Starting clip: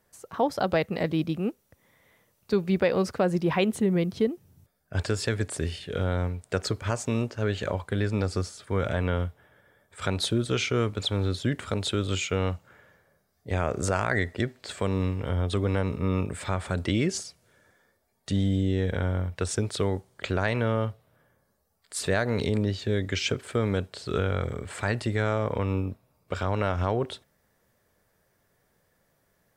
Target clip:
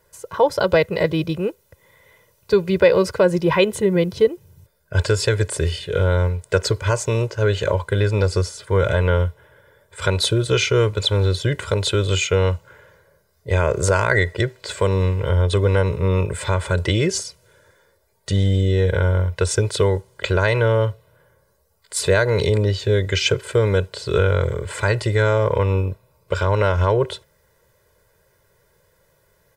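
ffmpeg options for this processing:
-af "aecho=1:1:2:0.84,volume=2"

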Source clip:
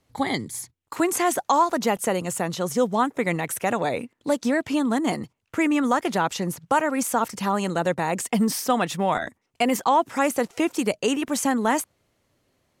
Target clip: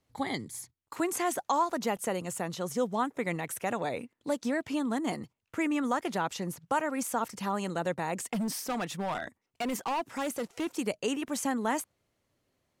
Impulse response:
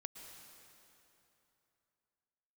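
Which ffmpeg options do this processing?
-filter_complex "[0:a]asettb=1/sr,asplit=3[s0][s1][s2];[s0]atrim=end=8.334[s3];[s1]atrim=start=8.33:end=10.67,asetpts=PTS-STARTPTS,afade=t=in:d=0.004:c=qsin,afade=t=out:st=2.336:d=0.004:c=qsin,asoftclip=type=hard:threshold=0.1[s4];[s2]atrim=start=10.666[s5];[s3][s4]acrossfade=d=0.004:c1=hsin:c2=qsin[s6];[s6][s5]acrossfade=d=0.004:c1=qsin:c2=hsin,volume=0.398"

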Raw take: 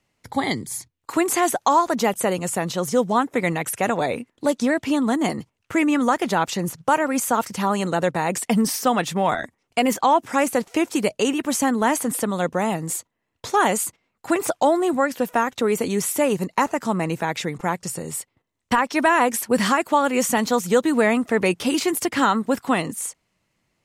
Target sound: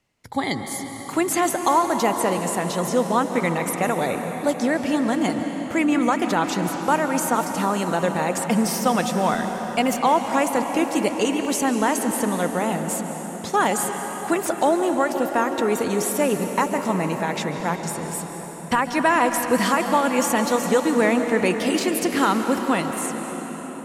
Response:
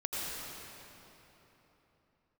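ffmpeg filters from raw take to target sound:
-filter_complex "[0:a]asplit=2[s0][s1];[1:a]atrim=start_sample=2205,asetrate=26019,aresample=44100[s2];[s1][s2]afir=irnorm=-1:irlink=0,volume=0.266[s3];[s0][s3]amix=inputs=2:normalize=0,volume=0.668"

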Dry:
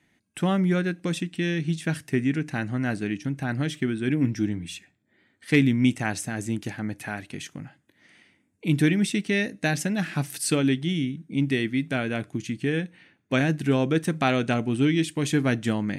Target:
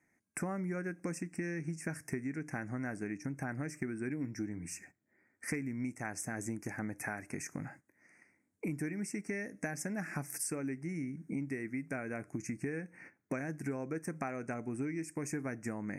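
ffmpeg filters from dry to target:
-af "agate=range=0.251:threshold=0.00224:ratio=16:detection=peak,bass=f=250:g=-5,treble=f=4000:g=1,acompressor=threshold=0.01:ratio=10,asuperstop=centerf=3500:order=8:qfactor=1.2,volume=1.78"

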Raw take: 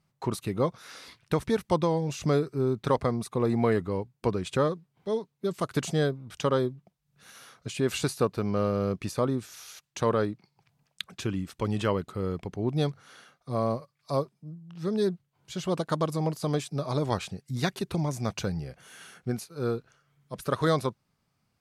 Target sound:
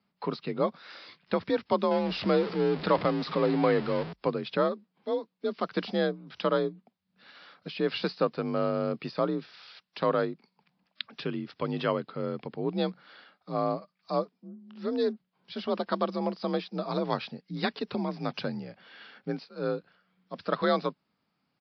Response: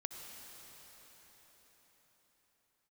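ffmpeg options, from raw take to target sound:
-filter_complex "[0:a]asettb=1/sr,asplit=3[s0][s1][s2];[s0]atrim=end=1.914[s3];[s1]atrim=start=1.91:end=4.13,asetpts=PTS-STARTPTS,afade=t=in:d=0.004:c=qsin,afade=t=out:st=2.216:d=0.004:c=qsin,aeval=exprs='val(0)+0.5*0.0335*sgn(val(0))':c=same[s4];[s2]atrim=start=4.126[s5];[s3][s4]acrossfade=d=0.004:c1=hsin:c2=qsin[s6];[s6][s5]acrossfade=d=0.004:c1=qsin:c2=hsin,lowshelf=f=140:g=-8.5,afreqshift=43,aresample=11025,aresample=44100" -ar 48000 -c:a wmav2 -b:a 64k

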